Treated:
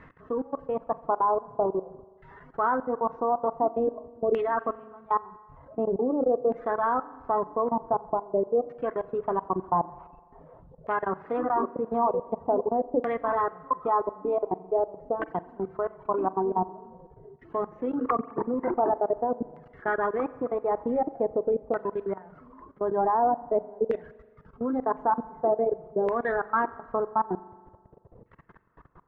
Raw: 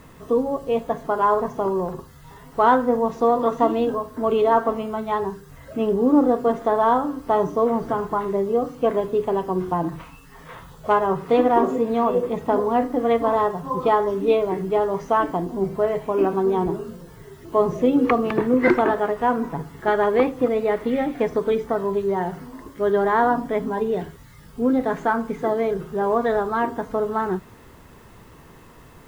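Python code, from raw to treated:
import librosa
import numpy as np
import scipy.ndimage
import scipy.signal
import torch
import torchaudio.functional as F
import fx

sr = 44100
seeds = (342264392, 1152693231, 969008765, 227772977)

y = fx.dereverb_blind(x, sr, rt60_s=0.61)
y = fx.level_steps(y, sr, step_db=24)
y = fx.filter_lfo_lowpass(y, sr, shape='saw_down', hz=0.46, low_hz=510.0, high_hz=1900.0, q=2.7)
y = fx.rev_spring(y, sr, rt60_s=1.5, pass_ms=(42,), chirp_ms=50, drr_db=17.0)
y = F.gain(torch.from_numpy(y), -4.0).numpy()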